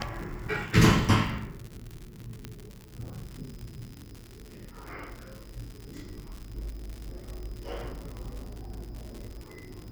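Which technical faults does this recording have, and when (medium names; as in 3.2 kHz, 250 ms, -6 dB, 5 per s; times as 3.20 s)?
crackle 120 per s -35 dBFS
2.45 s: pop -22 dBFS
8.17 s: pop -28 dBFS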